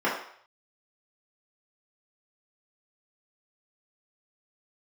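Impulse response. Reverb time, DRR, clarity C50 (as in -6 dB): 0.60 s, -7.5 dB, 4.0 dB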